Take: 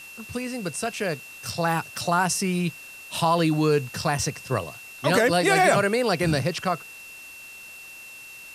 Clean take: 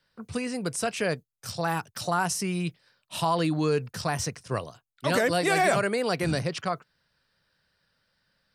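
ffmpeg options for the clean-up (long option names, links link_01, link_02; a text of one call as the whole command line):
ffmpeg -i in.wav -af "bandreject=frequency=2700:width=30,afwtdn=0.0045,asetnsamples=nb_out_samples=441:pad=0,asendcmd='1.29 volume volume -4dB',volume=0dB" out.wav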